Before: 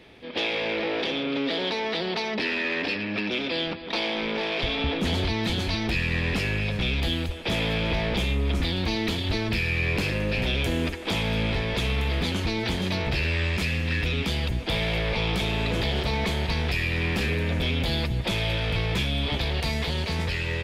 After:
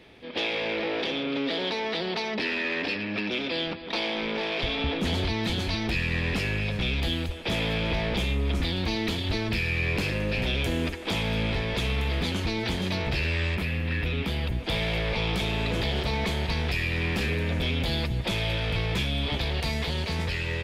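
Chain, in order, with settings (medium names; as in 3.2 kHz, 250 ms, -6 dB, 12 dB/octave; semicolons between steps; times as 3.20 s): 13.54–14.63 s: peaking EQ 6.5 kHz -14.5 dB -> -7 dB 1.3 oct; trim -1.5 dB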